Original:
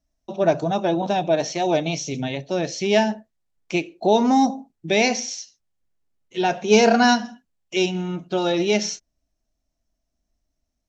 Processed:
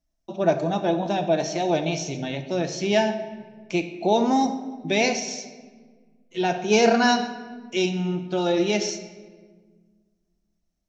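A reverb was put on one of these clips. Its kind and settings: simulated room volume 1400 m³, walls mixed, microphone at 0.76 m; trim -3 dB

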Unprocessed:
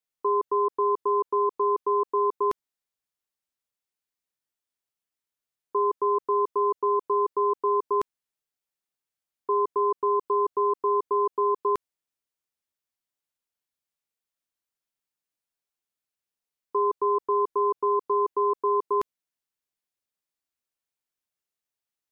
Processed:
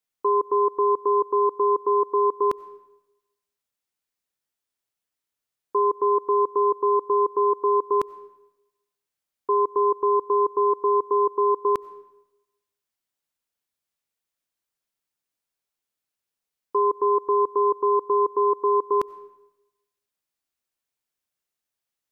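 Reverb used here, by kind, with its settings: algorithmic reverb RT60 0.96 s, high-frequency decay 0.8×, pre-delay 50 ms, DRR 19.5 dB; trim +3 dB

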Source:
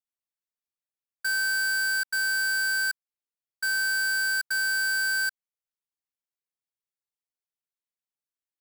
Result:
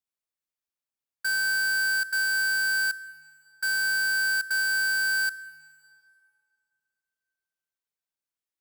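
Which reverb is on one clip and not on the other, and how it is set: plate-style reverb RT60 2.7 s, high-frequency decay 0.7×, DRR 16.5 dB

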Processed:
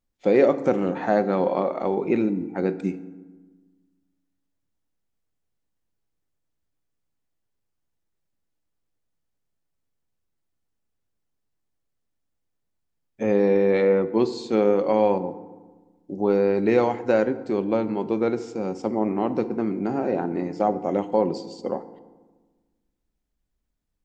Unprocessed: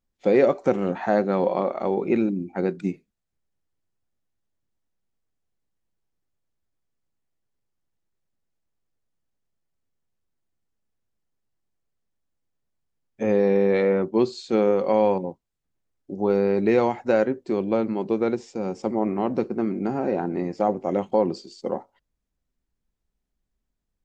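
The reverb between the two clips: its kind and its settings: FDN reverb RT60 1.3 s, low-frequency decay 1.35×, high-frequency decay 0.55×, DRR 12 dB

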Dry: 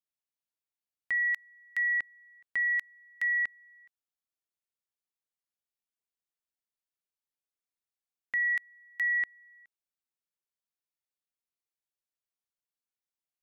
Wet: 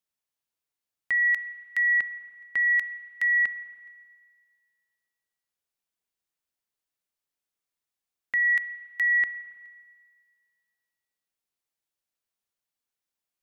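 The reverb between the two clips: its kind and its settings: spring tank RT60 1.8 s, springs 33/54 ms, chirp 70 ms, DRR 13 dB; trim +4.5 dB

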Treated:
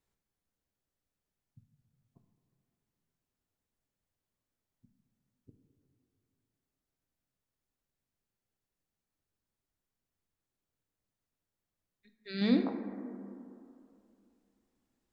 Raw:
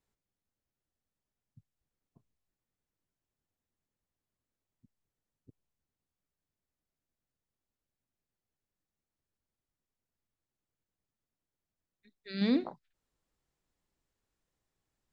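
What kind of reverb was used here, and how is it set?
plate-style reverb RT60 2.7 s, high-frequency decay 0.25×, DRR 5.5 dB

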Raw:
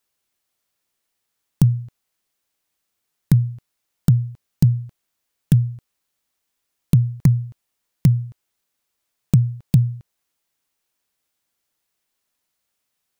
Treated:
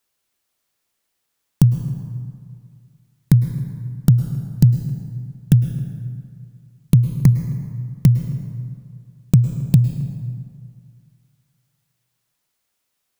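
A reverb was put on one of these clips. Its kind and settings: plate-style reverb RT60 2.2 s, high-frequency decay 0.55×, pre-delay 95 ms, DRR 8.5 dB; trim +2 dB

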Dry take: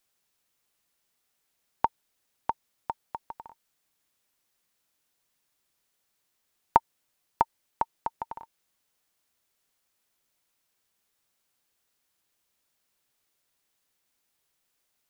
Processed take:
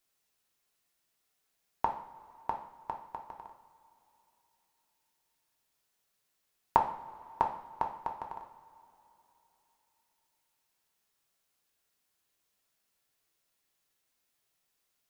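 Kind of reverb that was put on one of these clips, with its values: two-slope reverb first 0.56 s, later 3.4 s, from -18 dB, DRR 1.5 dB; trim -4.5 dB

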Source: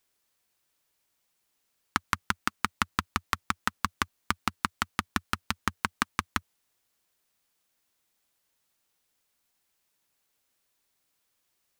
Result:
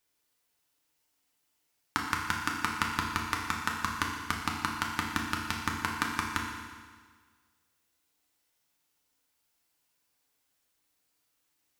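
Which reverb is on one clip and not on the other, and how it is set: FDN reverb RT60 1.6 s, low-frequency decay 1×, high-frequency decay 0.95×, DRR -1 dB; trim -4 dB

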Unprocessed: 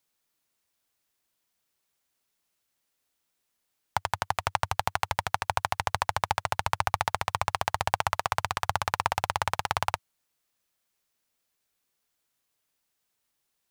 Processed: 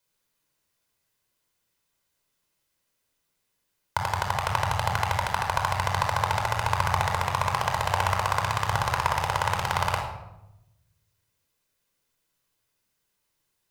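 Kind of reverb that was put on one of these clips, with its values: simulated room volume 3000 m³, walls furnished, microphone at 5 m; trim -1.5 dB

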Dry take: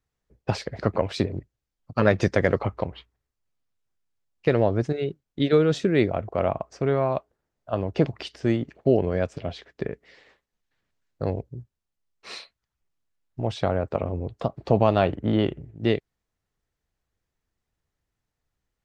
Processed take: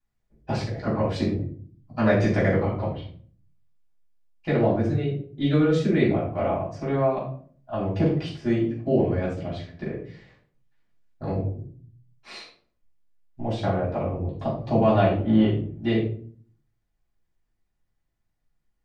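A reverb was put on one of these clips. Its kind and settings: simulated room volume 450 m³, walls furnished, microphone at 8.2 m; trim -12.5 dB

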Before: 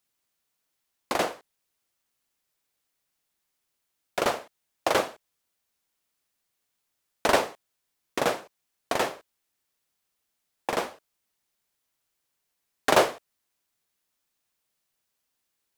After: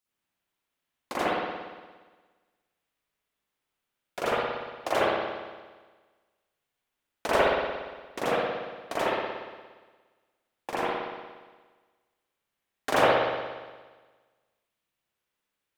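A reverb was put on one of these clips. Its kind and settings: spring tank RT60 1.4 s, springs 58 ms, chirp 80 ms, DRR -8.5 dB; trim -8.5 dB

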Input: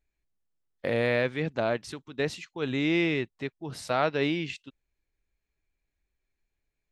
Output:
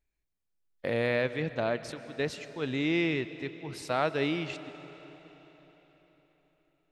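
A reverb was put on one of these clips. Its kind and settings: algorithmic reverb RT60 4.3 s, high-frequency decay 0.9×, pre-delay 85 ms, DRR 13 dB; trim -2.5 dB

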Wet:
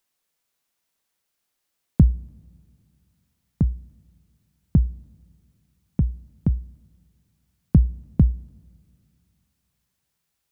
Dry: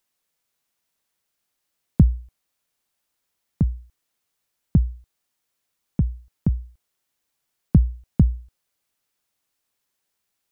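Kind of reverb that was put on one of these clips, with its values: two-slope reverb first 0.23 s, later 2.6 s, from -18 dB, DRR 18.5 dB

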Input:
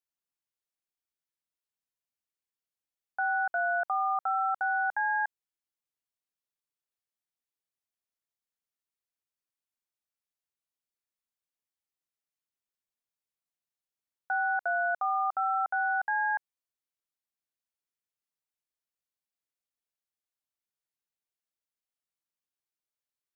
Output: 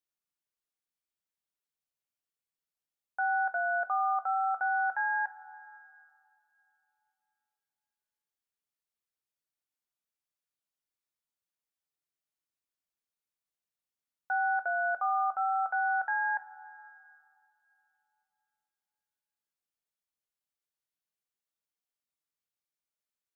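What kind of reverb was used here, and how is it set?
two-slope reverb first 0.2 s, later 3 s, from -19 dB, DRR 8 dB; trim -2.5 dB

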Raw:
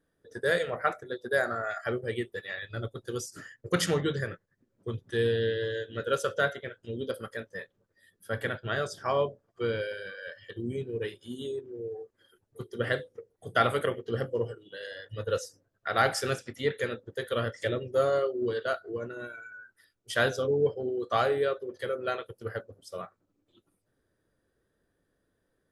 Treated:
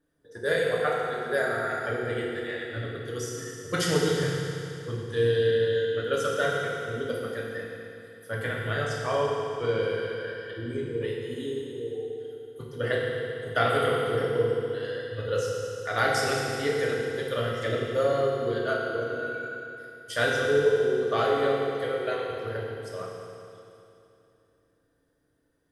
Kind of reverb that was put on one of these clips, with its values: FDN reverb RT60 2.8 s, high-frequency decay 0.95×, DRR -3.5 dB; trim -2 dB

